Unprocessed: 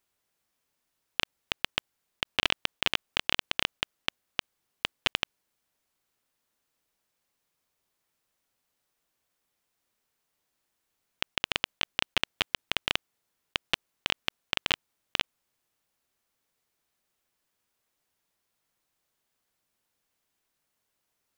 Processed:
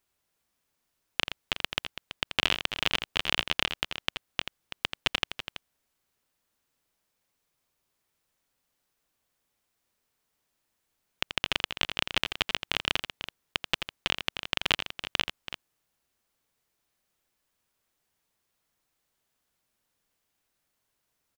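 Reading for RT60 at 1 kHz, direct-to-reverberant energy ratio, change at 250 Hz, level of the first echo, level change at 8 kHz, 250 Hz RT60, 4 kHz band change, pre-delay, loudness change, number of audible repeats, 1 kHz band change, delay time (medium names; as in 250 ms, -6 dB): no reverb, no reverb, +1.5 dB, -9.0 dB, +1.0 dB, no reverb, +1.0 dB, no reverb, +0.5 dB, 2, +1.0 dB, 84 ms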